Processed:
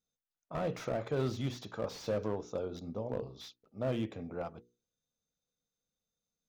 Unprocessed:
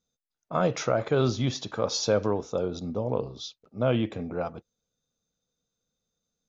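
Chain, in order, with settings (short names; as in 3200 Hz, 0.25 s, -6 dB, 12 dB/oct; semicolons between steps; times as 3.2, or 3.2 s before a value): notches 60/120/180/240/300/360/420/480 Hz; slew limiter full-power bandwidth 49 Hz; gain -8 dB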